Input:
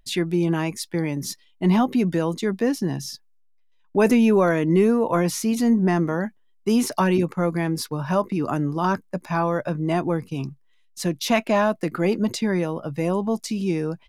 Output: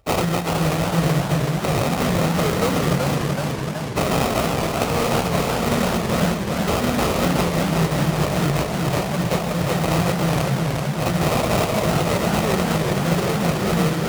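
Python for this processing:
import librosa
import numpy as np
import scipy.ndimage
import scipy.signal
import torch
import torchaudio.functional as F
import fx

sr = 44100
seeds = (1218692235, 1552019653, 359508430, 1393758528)

y = scipy.signal.medfilt(x, 5)
y = fx.graphic_eq(y, sr, hz=(125, 250, 500, 1000, 4000), db=(9, -10, -4, -3, 12))
y = fx.mod_noise(y, sr, seeds[0], snr_db=10)
y = (np.mod(10.0 ** (17.5 / 20.0) * y + 1.0, 2.0) - 1.0) / 10.0 ** (17.5 / 20.0)
y = fx.low_shelf(y, sr, hz=190.0, db=-3.5)
y = fx.room_shoebox(y, sr, seeds[1], volume_m3=3300.0, walls='furnished', distance_m=4.5)
y = fx.sample_hold(y, sr, seeds[2], rate_hz=1700.0, jitter_pct=20)
y = y + 0.31 * np.pad(y, (int(1.6 * sr / 1000.0), 0))[:len(y)]
y = fx.over_compress(y, sr, threshold_db=-20.0, ratio=-0.5)
y = scipy.signal.sosfilt(scipy.signal.butter(2, 51.0, 'highpass', fs=sr, output='sos'), y)
y = fx.echo_warbled(y, sr, ms=375, feedback_pct=69, rate_hz=2.8, cents=164, wet_db=-3.5)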